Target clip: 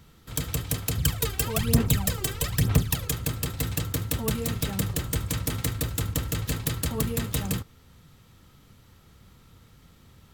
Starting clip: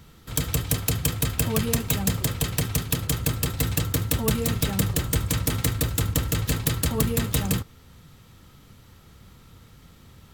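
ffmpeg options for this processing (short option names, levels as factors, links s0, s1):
-filter_complex "[0:a]asplit=3[s0][s1][s2];[s0]afade=t=out:st=0.97:d=0.02[s3];[s1]aphaser=in_gain=1:out_gain=1:delay=2.6:decay=0.69:speed=1.1:type=sinusoidal,afade=t=in:st=0.97:d=0.02,afade=t=out:st=3.1:d=0.02[s4];[s2]afade=t=in:st=3.1:d=0.02[s5];[s3][s4][s5]amix=inputs=3:normalize=0,volume=0.631"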